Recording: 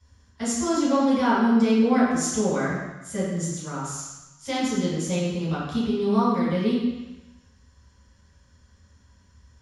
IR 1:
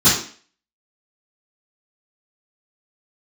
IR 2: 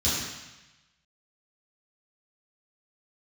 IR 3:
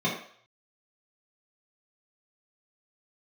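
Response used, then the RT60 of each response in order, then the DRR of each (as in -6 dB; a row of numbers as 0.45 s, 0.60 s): 2; 0.45 s, 1.0 s, 0.55 s; -17.0 dB, -11.5 dB, -7.5 dB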